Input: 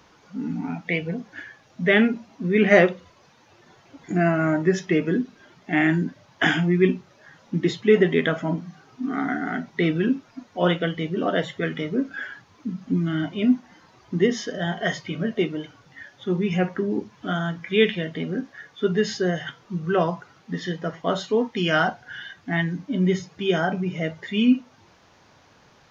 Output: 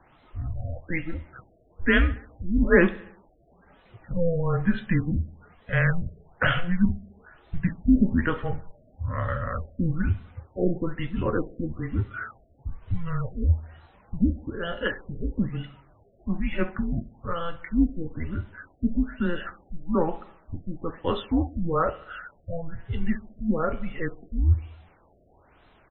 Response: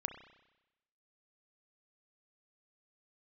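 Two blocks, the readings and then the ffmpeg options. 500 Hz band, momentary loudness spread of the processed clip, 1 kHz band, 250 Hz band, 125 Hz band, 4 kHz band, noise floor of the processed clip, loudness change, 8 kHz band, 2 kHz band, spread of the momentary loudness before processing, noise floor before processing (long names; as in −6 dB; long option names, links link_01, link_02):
−7.0 dB, 16 LU, −4.5 dB, −3.5 dB, 0.0 dB, −10.0 dB, −59 dBFS, −4.0 dB, can't be measured, −4.5 dB, 13 LU, −56 dBFS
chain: -filter_complex "[0:a]asplit=2[link_01][link_02];[link_02]aecho=0:1:68|136|204|272|340:0.106|0.0614|0.0356|0.0207|0.012[link_03];[link_01][link_03]amix=inputs=2:normalize=0,afreqshift=-170,afftfilt=real='re*lt(b*sr/1024,700*pow(4200/700,0.5+0.5*sin(2*PI*1.1*pts/sr)))':imag='im*lt(b*sr/1024,700*pow(4200/700,0.5+0.5*sin(2*PI*1.1*pts/sr)))':win_size=1024:overlap=0.75,volume=-2dB"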